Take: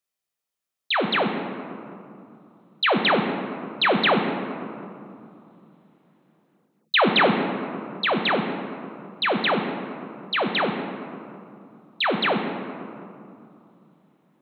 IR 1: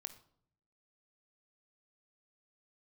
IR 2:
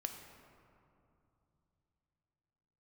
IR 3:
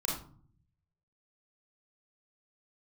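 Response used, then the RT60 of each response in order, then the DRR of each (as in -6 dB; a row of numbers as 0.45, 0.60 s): 2; 0.65, 2.9, 0.45 s; 9.0, 4.5, -3.5 dB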